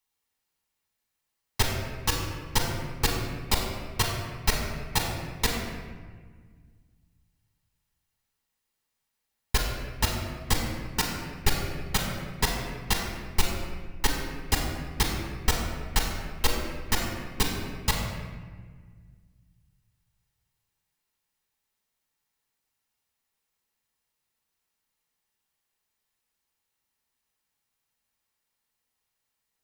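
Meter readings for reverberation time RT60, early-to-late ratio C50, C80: 1.6 s, 2.5 dB, 4.0 dB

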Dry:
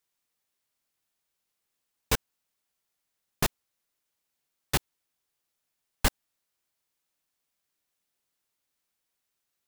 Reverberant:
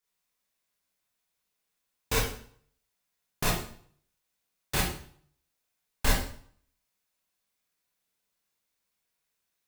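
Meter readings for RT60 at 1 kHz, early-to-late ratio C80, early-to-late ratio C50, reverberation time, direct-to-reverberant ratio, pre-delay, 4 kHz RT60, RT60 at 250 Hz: 0.55 s, 7.0 dB, 2.5 dB, 0.55 s, -6.0 dB, 23 ms, 0.50 s, 0.55 s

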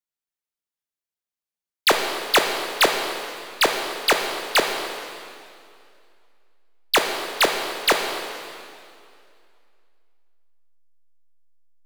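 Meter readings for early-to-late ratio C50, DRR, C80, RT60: 4.5 dB, 3.0 dB, 5.5 dB, 2.4 s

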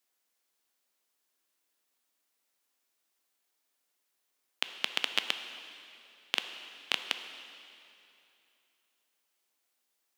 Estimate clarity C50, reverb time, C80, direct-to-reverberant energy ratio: 8.5 dB, 2.8 s, 9.5 dB, 7.5 dB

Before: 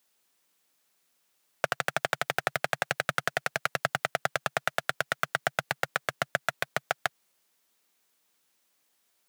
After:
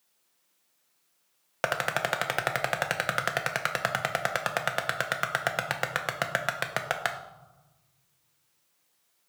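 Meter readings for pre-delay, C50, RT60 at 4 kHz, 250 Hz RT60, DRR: 6 ms, 9.0 dB, 0.65 s, 1.5 s, 4.5 dB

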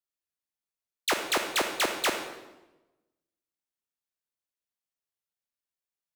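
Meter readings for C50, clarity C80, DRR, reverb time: 6.5 dB, 9.0 dB, 5.0 dB, 1.0 s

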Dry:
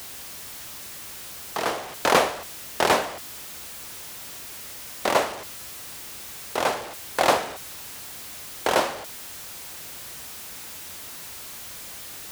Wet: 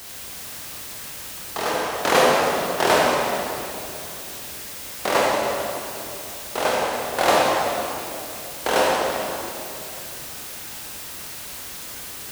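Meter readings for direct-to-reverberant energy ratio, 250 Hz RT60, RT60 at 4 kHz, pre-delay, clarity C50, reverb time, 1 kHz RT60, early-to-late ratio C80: -4.0 dB, 3.3 s, 2.1 s, 20 ms, -2.0 dB, 2.8 s, 2.7 s, 0.0 dB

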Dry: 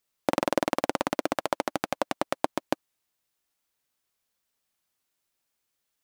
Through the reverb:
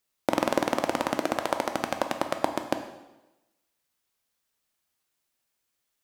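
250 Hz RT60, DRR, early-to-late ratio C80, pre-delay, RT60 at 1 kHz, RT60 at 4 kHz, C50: 1.0 s, 6.0 dB, 11.0 dB, 6 ms, 1.0 s, 0.95 s, 9.0 dB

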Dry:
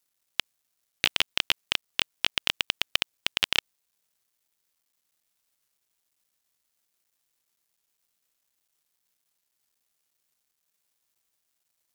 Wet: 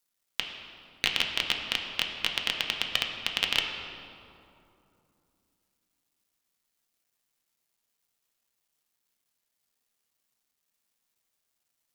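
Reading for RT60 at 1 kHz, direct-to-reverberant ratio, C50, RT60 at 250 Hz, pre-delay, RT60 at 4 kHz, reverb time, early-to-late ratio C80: 2.7 s, 1.5 dB, 4.5 dB, 3.6 s, 4 ms, 1.5 s, 2.8 s, 5.5 dB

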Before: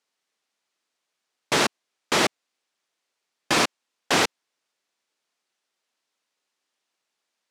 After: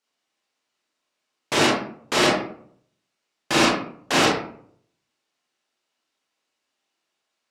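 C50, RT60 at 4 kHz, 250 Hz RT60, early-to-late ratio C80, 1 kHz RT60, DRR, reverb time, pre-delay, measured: 2.5 dB, 0.35 s, 0.70 s, 6.0 dB, 0.55 s, -4.5 dB, 0.60 s, 24 ms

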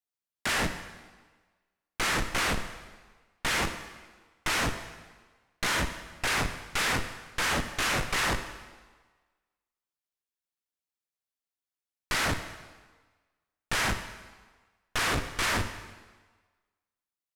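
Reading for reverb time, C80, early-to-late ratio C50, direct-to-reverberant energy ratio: 1.4 s, 11.0 dB, 9.5 dB, 8.0 dB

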